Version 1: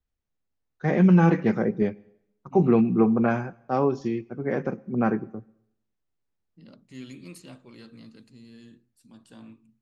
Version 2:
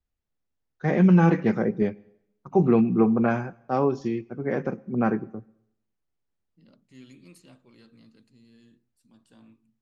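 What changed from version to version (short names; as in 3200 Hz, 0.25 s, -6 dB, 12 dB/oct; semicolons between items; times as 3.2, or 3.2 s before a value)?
second voice -7.5 dB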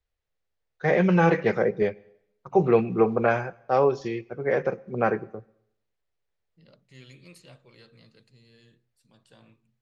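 second voice: add bell 140 Hz +8.5 dB 0.8 oct; master: add graphic EQ 250/500/2000/4000 Hz -11/+8/+5/+5 dB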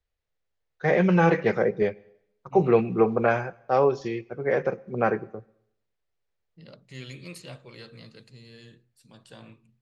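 second voice +8.5 dB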